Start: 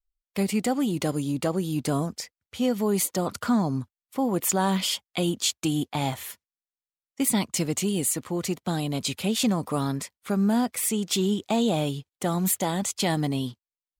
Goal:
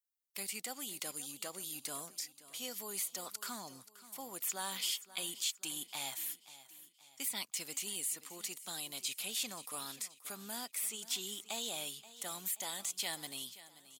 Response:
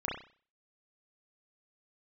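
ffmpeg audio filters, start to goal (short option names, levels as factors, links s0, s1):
-filter_complex "[0:a]aderivative,acrossover=split=3300[s0][s1];[s1]acompressor=threshold=0.0158:ratio=4:attack=1:release=60[s2];[s0][s2]amix=inputs=2:normalize=0,aecho=1:1:529|1058|1587|2116:0.15|0.0688|0.0317|0.0146,volume=1.12"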